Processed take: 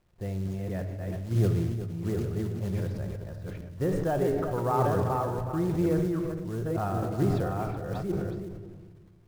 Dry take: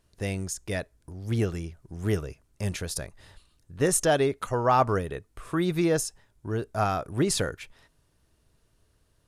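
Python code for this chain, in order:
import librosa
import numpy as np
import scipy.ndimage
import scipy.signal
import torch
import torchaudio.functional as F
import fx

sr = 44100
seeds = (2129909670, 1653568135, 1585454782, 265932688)

y = fx.reverse_delay(x, sr, ms=451, wet_db=-3)
y = scipy.signal.sosfilt(scipy.signal.butter(2, 1200.0, 'lowpass', fs=sr, output='sos'), y)
y = fx.peak_eq(y, sr, hz=98.0, db=5.0, octaves=1.6)
y = fx.quant_companded(y, sr, bits=6)
y = y + 10.0 ** (-12.5 / 20.0) * np.pad(y, (int(369 * sr / 1000.0), 0))[:len(y)]
y = fx.room_shoebox(y, sr, seeds[0], volume_m3=2500.0, walls='mixed', distance_m=0.9)
y = fx.sustainer(y, sr, db_per_s=28.0)
y = y * 10.0 ** (-6.0 / 20.0)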